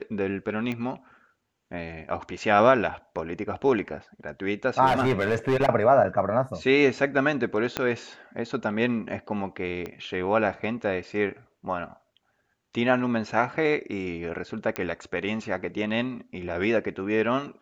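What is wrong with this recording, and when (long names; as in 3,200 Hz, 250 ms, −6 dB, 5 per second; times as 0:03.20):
0:00.72: click −20 dBFS
0:04.86–0:05.69: clipping −18 dBFS
0:07.77: click −10 dBFS
0:09.86: click −21 dBFS
0:14.76: click −13 dBFS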